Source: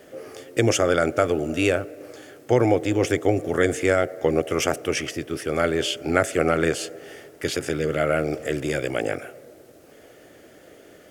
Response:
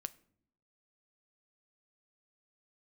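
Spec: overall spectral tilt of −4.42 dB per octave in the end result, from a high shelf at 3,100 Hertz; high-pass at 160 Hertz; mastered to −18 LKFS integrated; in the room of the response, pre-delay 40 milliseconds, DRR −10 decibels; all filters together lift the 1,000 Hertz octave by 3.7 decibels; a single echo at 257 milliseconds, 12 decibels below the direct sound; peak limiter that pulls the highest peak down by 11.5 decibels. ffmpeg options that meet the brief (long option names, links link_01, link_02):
-filter_complex "[0:a]highpass=160,equalizer=frequency=1000:width_type=o:gain=6.5,highshelf=frequency=3100:gain=-3.5,alimiter=limit=-13.5dB:level=0:latency=1,aecho=1:1:257:0.251,asplit=2[link_01][link_02];[1:a]atrim=start_sample=2205,adelay=40[link_03];[link_02][link_03]afir=irnorm=-1:irlink=0,volume=13dB[link_04];[link_01][link_04]amix=inputs=2:normalize=0,volume=-3dB"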